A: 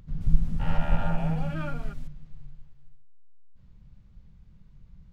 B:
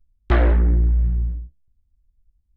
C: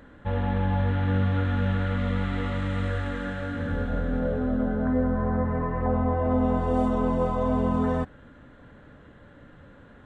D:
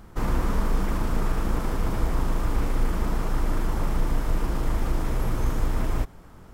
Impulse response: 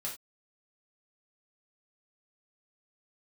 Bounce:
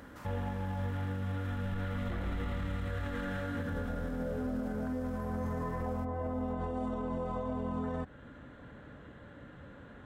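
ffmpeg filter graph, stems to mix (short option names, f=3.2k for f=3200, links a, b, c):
-filter_complex "[0:a]adelay=1400,volume=-17.5dB[a];[1:a]adelay=1800,volume=-15.5dB[b];[2:a]highpass=42,alimiter=limit=-20.5dB:level=0:latency=1:release=294,volume=-0.5dB[c];[3:a]highpass=890,acompressor=threshold=-53dB:ratio=2,volume=-5dB[d];[a][b][c][d]amix=inputs=4:normalize=0,alimiter=level_in=4dB:limit=-24dB:level=0:latency=1:release=73,volume=-4dB"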